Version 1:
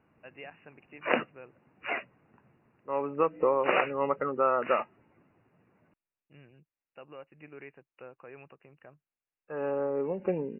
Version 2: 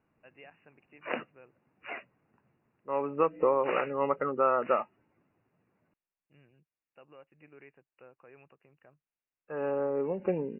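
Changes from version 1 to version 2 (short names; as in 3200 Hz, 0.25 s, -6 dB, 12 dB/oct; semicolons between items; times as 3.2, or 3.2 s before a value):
first voice -7.0 dB; background -7.5 dB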